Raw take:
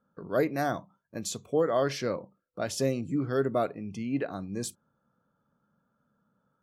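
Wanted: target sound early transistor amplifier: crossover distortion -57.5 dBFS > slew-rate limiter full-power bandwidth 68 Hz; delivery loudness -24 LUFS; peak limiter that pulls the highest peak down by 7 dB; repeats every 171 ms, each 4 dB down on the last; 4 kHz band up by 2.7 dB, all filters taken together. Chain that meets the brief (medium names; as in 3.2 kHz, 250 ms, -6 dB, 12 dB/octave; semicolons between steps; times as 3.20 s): peaking EQ 4 kHz +3.5 dB; peak limiter -21 dBFS; feedback delay 171 ms, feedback 63%, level -4 dB; crossover distortion -57.5 dBFS; slew-rate limiter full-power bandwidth 68 Hz; trim +8 dB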